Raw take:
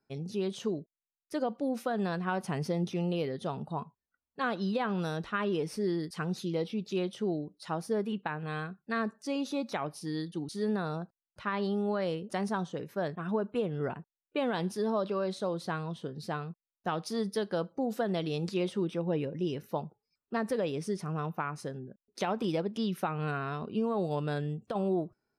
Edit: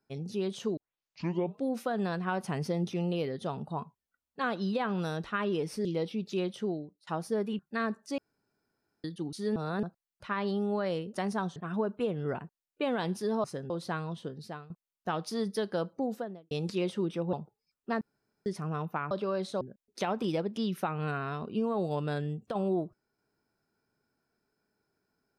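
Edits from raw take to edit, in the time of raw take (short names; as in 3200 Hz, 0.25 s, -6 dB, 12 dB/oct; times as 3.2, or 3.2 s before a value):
0.77 tape start 0.90 s
5.85–6.44 cut
7.21–7.66 fade out, to -23 dB
8.18–8.75 cut
9.34–10.2 room tone
10.72–10.99 reverse
12.72–13.11 cut
14.99–15.49 swap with 21.55–21.81
16.03–16.49 fade out, to -15.5 dB
17.76–18.3 studio fade out
19.12–19.77 cut
20.45–20.9 room tone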